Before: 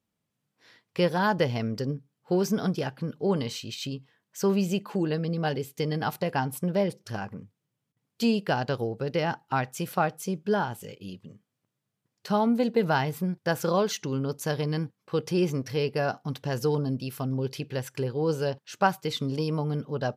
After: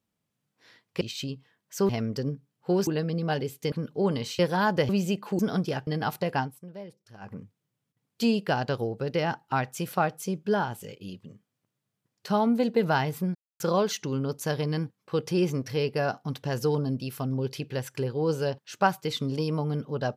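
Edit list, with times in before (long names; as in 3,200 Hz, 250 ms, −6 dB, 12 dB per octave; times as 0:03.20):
0:01.01–0:01.51: swap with 0:03.64–0:04.52
0:02.49–0:02.97: swap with 0:05.02–0:05.87
0:06.40–0:07.32: duck −16 dB, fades 0.13 s
0:13.35–0:13.60: silence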